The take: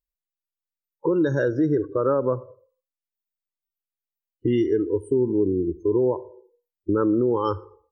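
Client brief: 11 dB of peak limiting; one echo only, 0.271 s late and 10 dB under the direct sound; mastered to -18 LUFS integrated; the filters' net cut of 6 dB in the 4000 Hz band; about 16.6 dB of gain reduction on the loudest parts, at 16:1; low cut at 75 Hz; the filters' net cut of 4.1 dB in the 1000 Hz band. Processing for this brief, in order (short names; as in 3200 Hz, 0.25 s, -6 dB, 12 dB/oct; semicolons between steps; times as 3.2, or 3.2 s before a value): HPF 75 Hz; bell 1000 Hz -4.5 dB; bell 4000 Hz -9 dB; compressor 16:1, threshold -34 dBFS; limiter -34 dBFS; echo 0.271 s -10 dB; gain +25 dB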